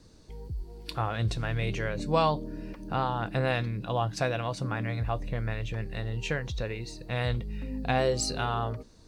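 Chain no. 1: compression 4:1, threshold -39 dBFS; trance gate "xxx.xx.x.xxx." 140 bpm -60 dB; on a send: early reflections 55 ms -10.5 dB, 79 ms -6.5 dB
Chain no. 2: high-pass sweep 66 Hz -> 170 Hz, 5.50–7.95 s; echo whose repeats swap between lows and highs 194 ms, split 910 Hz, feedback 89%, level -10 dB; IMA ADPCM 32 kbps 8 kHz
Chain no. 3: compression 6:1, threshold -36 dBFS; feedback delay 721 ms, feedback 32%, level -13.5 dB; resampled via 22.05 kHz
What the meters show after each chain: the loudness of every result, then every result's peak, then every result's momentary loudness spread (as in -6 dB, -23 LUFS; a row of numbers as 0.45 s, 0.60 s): -42.0 LUFS, -29.0 LUFS, -40.5 LUFS; -25.5 dBFS, -12.0 dBFS, -19.0 dBFS; 5 LU, 8 LU, 4 LU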